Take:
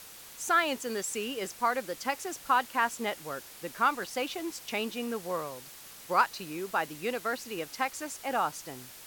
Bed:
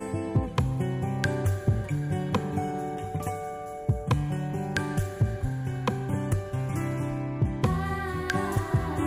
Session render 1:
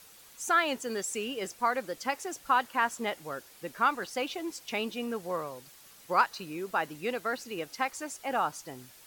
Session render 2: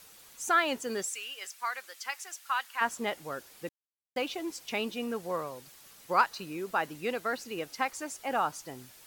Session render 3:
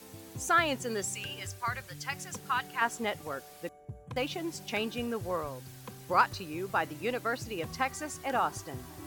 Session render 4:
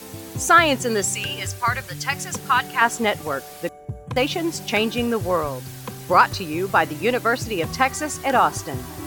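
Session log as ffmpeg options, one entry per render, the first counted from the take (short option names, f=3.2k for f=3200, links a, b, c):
-af "afftdn=nr=7:nf=-49"
-filter_complex "[0:a]asplit=3[a][b][c];[a]afade=t=out:st=1.08:d=0.02[d];[b]highpass=1.4k,afade=t=in:st=1.08:d=0.02,afade=t=out:st=2.8:d=0.02[e];[c]afade=t=in:st=2.8:d=0.02[f];[d][e][f]amix=inputs=3:normalize=0,asplit=3[g][h][i];[g]atrim=end=3.69,asetpts=PTS-STARTPTS,afade=t=out:st=3.686:d=0.004:c=hsin[j];[h]atrim=start=3.69:end=4.16,asetpts=PTS-STARTPTS,volume=0[k];[i]atrim=start=4.16,asetpts=PTS-STARTPTS,afade=t=in:d=0.004:c=hsin[l];[j][k][l]concat=n=3:v=0:a=1"
-filter_complex "[1:a]volume=-18.5dB[a];[0:a][a]amix=inputs=2:normalize=0"
-af "volume=12dB,alimiter=limit=-3dB:level=0:latency=1"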